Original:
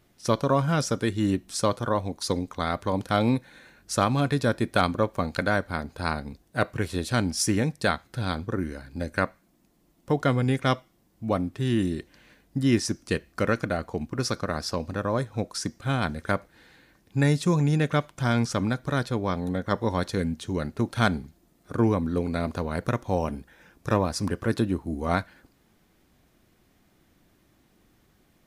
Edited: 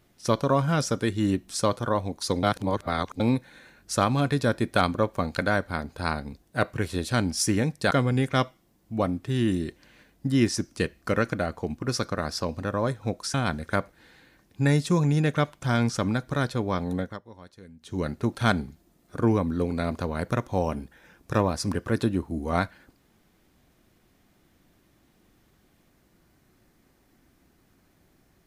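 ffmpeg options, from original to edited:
-filter_complex "[0:a]asplit=7[s0][s1][s2][s3][s4][s5][s6];[s0]atrim=end=2.432[s7];[s1]atrim=start=2.428:end=3.202,asetpts=PTS-STARTPTS,areverse[s8];[s2]atrim=start=3.198:end=7.912[s9];[s3]atrim=start=10.218:end=15.652[s10];[s4]atrim=start=15.898:end=19.75,asetpts=PTS-STARTPTS,afade=t=out:st=3.652:d=0.2:silence=0.0891251[s11];[s5]atrim=start=19.75:end=20.35,asetpts=PTS-STARTPTS,volume=0.0891[s12];[s6]atrim=start=20.35,asetpts=PTS-STARTPTS,afade=t=in:d=0.2:silence=0.0891251[s13];[s7][s8]acrossfade=d=0.004:c1=hsin:c2=hsin[s14];[s14][s9]acrossfade=d=0.004:c1=hsin:c2=hsin[s15];[s15][s10]acrossfade=d=0.004:c1=hsin:c2=hsin[s16];[s11][s12][s13]concat=n=3:v=0:a=1[s17];[s16][s17]acrossfade=d=0.004:c1=hsin:c2=hsin"

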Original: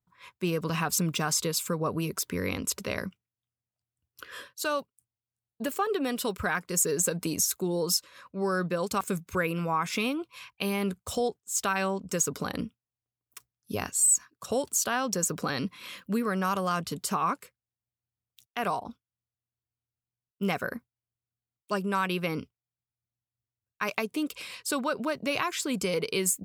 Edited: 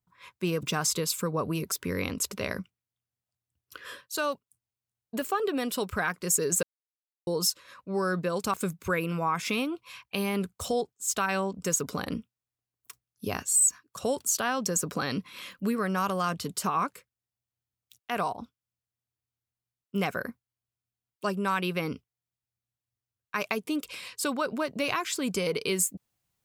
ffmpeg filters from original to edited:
-filter_complex "[0:a]asplit=4[s0][s1][s2][s3];[s0]atrim=end=0.632[s4];[s1]atrim=start=1.098:end=7.1,asetpts=PTS-STARTPTS,afade=t=out:st=5.998:d=0.004:c=hsin[s5];[s2]atrim=start=7.1:end=7.74,asetpts=PTS-STARTPTS,volume=0[s6];[s3]atrim=start=7.74,asetpts=PTS-STARTPTS,afade=t=in:d=0.004:c=hsin[s7];[s5][s6][s7]concat=n=3:v=0:a=1[s8];[s4][s8]acrossfade=d=0.004:c1=hsin:c2=hsin"

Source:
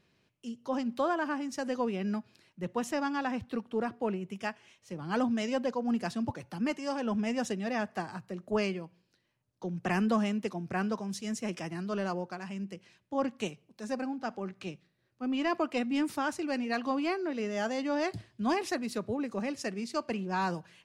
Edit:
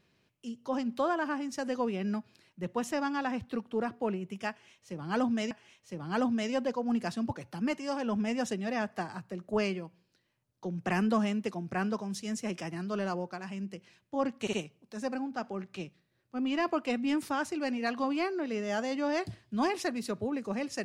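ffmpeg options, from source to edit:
-filter_complex "[0:a]asplit=4[s0][s1][s2][s3];[s0]atrim=end=5.512[s4];[s1]atrim=start=4.498:end=13.462[s5];[s2]atrim=start=13.398:end=13.462[s6];[s3]atrim=start=13.398[s7];[s4][s5]acrossfade=d=0.004:c1=hsin:c2=hsin[s8];[s8][s6]acrossfade=d=0.004:c1=hsin:c2=hsin[s9];[s9][s7]acrossfade=d=0.004:c1=hsin:c2=hsin"

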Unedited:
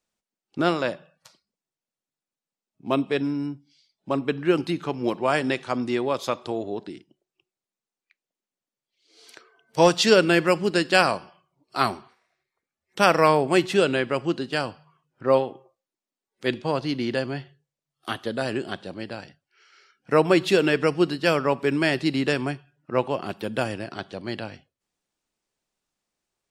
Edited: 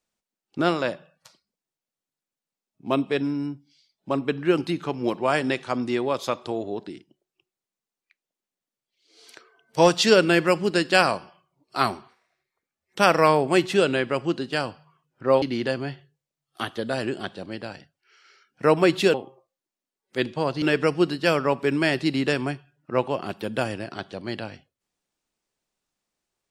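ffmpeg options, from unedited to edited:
-filter_complex "[0:a]asplit=4[s0][s1][s2][s3];[s0]atrim=end=15.422[s4];[s1]atrim=start=16.898:end=20.622[s5];[s2]atrim=start=15.418:end=16.902[s6];[s3]atrim=start=20.618[s7];[s4][s5]acrossfade=d=0.004:c1=hsin:c2=hsin[s8];[s8][s6]acrossfade=d=0.004:c1=hsin:c2=hsin[s9];[s9][s7]acrossfade=d=0.004:c1=hsin:c2=hsin"

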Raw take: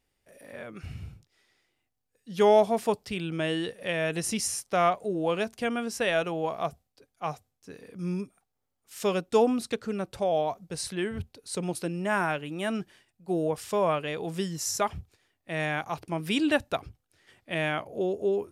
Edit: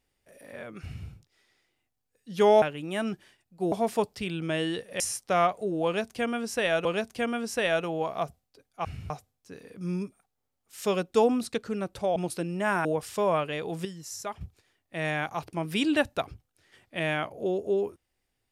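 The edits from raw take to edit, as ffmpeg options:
-filter_complex "[0:a]asplit=11[s0][s1][s2][s3][s4][s5][s6][s7][s8][s9][s10];[s0]atrim=end=2.622[s11];[s1]atrim=start=12.298:end=13.402[s12];[s2]atrim=start=2.618:end=3.902[s13];[s3]atrim=start=4.428:end=6.282[s14];[s4]atrim=start=5.278:end=7.282[s15];[s5]atrim=start=0.818:end=1.072[s16];[s6]atrim=start=7.278:end=10.342[s17];[s7]atrim=start=11.608:end=12.302[s18];[s8]atrim=start=13.398:end=14.402[s19];[s9]atrim=start=14.398:end=14.962,asetpts=PTS-STARTPTS,volume=0.376[s20];[s10]atrim=start=14.958[s21];[s11][s12]acrossfade=d=0.004:c1=hsin:c2=hsin[s22];[s22][s13]acrossfade=d=0.004:c1=hsin:c2=hsin[s23];[s23][s14]acrossfade=d=0.004:c1=hsin:c2=hsin[s24];[s24][s15]acrossfade=d=0.004:c1=hsin:c2=hsin[s25];[s25][s16]acrossfade=d=0.004:c1=hsin:c2=hsin[s26];[s26][s17]acrossfade=d=0.004:c1=hsin:c2=hsin[s27];[s27][s18]acrossfade=d=0.004:c1=hsin:c2=hsin[s28];[s28][s19]acrossfade=d=0.004:c1=hsin:c2=hsin[s29];[s29][s20]acrossfade=d=0.004:c1=hsin:c2=hsin[s30];[s30][s21]acrossfade=d=0.004:c1=hsin:c2=hsin"

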